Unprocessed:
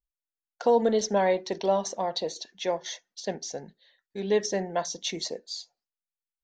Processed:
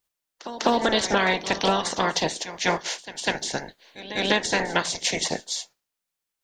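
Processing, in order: spectral peaks clipped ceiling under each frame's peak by 25 dB; compression 6:1, threshold -25 dBFS, peak gain reduction 8.5 dB; pre-echo 199 ms -14.5 dB; loudspeaker Doppler distortion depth 0.11 ms; trim +7.5 dB

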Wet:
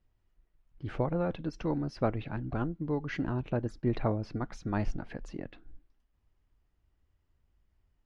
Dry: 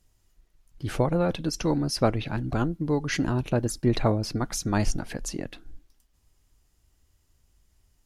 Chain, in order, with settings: low-pass 2.4 kHz 12 dB/octave; trim -6.5 dB

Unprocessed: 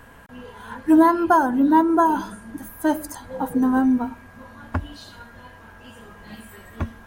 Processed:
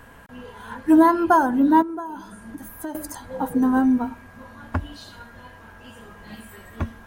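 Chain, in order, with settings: 1.82–2.95 s: compression 4:1, threshold -32 dBFS, peak gain reduction 16 dB

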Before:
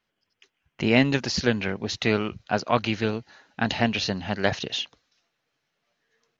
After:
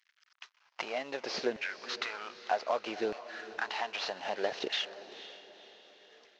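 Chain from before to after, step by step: CVSD coder 32 kbps; compression 5:1, threshold -39 dBFS, peak gain reduction 19.5 dB; LFO high-pass saw down 0.64 Hz 350–1900 Hz; echo that smears into a reverb 492 ms, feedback 44%, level -14 dB; trim +5 dB

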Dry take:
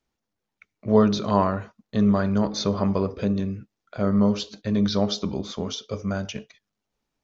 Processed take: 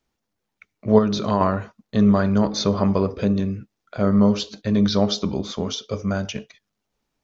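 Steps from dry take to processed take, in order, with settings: 0.98–1.41 s: compression, threshold -19 dBFS, peak gain reduction 6.5 dB; trim +3.5 dB

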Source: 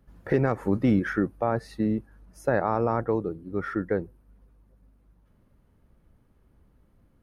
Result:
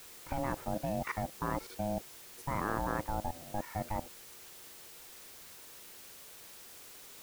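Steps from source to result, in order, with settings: ring modulator 420 Hz; level held to a coarse grid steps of 17 dB; added noise white -52 dBFS

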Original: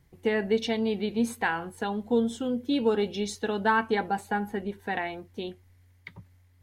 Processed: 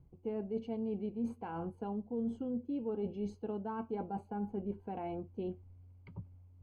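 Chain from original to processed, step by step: bass shelf 340 Hz +5 dB; reverse; compression 6:1, threshold -32 dBFS, peak gain reduction 14.5 dB; reverse; boxcar filter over 24 samples; trim -2 dB

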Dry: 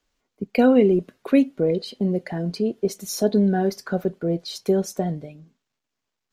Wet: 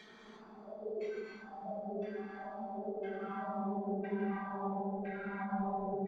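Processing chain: knee-point frequency compression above 2.1 kHz 1.5:1; bass shelf 260 Hz -10 dB; comb 0.9 ms, depth 84%; thinning echo 118 ms, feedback 77%, high-pass 150 Hz, level -10 dB; compression, threshold -29 dBFS, peak gain reduction 13.5 dB; valve stage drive 45 dB, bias 0.4; Paulstretch 14×, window 1.00 s, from 3.19 s; LFO low-pass saw down 0.95 Hz 420–1900 Hz; spectral noise reduction 18 dB; gated-style reverb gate 380 ms flat, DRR -3.5 dB; speed mistake 24 fps film run at 25 fps; endings held to a fixed fall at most 110 dB/s; trim +6.5 dB

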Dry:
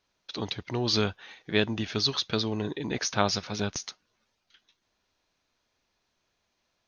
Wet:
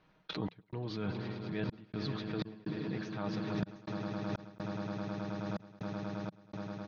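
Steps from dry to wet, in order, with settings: low-pass 2.1 kHz 12 dB/octave; comb 6.4 ms, depth 48%; on a send: echo with a slow build-up 106 ms, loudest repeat 8, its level -13.5 dB; on the sum: expander -44 dBFS; trance gate "xx.xxxx." 62 bpm -60 dB; reverse; compression 12:1, threshold -40 dBFS, peak gain reduction 23 dB; reverse; peaking EQ 170 Hz +9 dB 0.95 oct; swell ahead of each attack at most 40 dB/s; trim +2 dB

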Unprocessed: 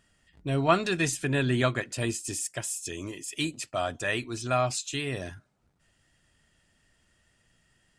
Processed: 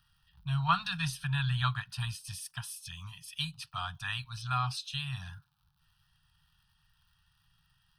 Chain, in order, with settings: crackle 150 per s -56 dBFS; elliptic band-stop 160–810 Hz, stop band 50 dB; static phaser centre 2.1 kHz, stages 6

